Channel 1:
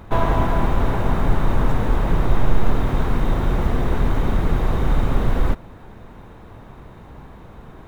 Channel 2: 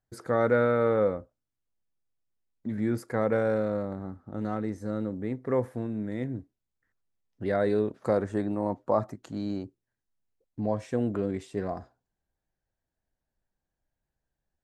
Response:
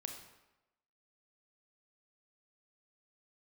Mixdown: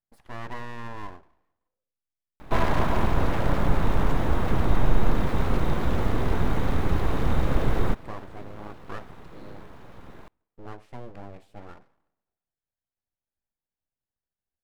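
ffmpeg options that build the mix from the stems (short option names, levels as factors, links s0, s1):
-filter_complex "[0:a]adelay=2400,volume=0.708,asplit=2[s0][s1];[s1]volume=0.0631[s2];[1:a]equalizer=f=6500:t=o:w=0.64:g=-13.5,volume=0.266,asplit=2[s3][s4];[s4]volume=0.316[s5];[2:a]atrim=start_sample=2205[s6];[s2][s5]amix=inputs=2:normalize=0[s7];[s7][s6]afir=irnorm=-1:irlink=0[s8];[s0][s3][s8]amix=inputs=3:normalize=0,aeval=exprs='abs(val(0))':c=same"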